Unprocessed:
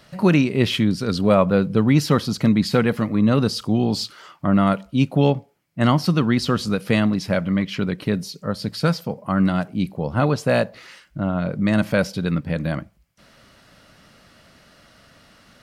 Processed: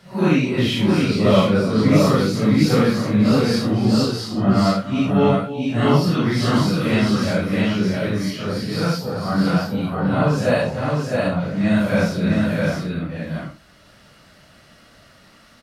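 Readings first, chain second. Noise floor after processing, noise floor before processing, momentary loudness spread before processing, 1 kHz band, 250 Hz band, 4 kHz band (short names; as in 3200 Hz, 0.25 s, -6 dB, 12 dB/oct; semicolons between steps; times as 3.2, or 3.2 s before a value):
-50 dBFS, -55 dBFS, 9 LU, +1.5 dB, +2.0 dB, +2.0 dB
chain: phase scrambler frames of 0.2 s; tapped delay 0.3/0.663 s -13/-3 dB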